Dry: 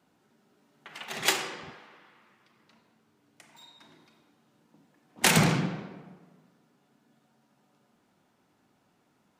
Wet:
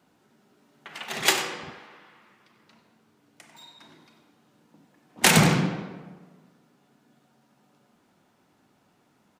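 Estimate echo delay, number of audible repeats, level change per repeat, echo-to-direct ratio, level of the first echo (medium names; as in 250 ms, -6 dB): 95 ms, 1, no regular repeats, -14.5 dB, -14.5 dB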